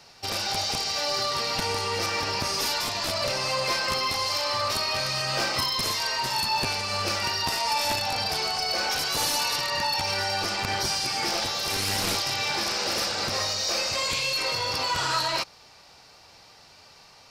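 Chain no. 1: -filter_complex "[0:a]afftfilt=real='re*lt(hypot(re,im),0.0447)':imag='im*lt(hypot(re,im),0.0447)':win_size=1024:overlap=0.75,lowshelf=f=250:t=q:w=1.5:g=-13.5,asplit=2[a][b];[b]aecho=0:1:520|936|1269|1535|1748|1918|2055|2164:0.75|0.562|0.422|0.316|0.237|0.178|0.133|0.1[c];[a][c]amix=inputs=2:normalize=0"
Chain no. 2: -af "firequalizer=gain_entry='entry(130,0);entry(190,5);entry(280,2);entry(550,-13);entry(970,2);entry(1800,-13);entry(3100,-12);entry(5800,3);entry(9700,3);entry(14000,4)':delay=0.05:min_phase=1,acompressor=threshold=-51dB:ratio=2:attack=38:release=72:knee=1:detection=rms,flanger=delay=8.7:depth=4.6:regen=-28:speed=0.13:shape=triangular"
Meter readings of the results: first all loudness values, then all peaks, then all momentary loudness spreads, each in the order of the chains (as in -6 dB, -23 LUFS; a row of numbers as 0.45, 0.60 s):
-31.0, -42.5 LUFS; -16.0, -30.5 dBFS; 4, 5 LU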